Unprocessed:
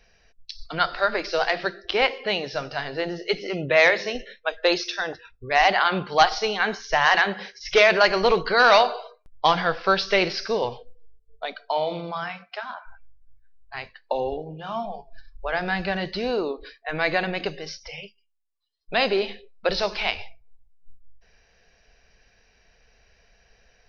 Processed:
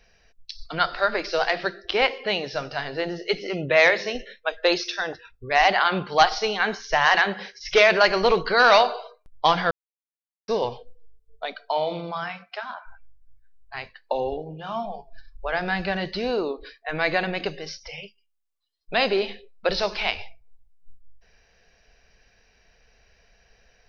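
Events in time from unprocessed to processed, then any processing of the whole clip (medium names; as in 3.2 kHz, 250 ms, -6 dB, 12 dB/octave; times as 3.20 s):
9.71–10.48 s: mute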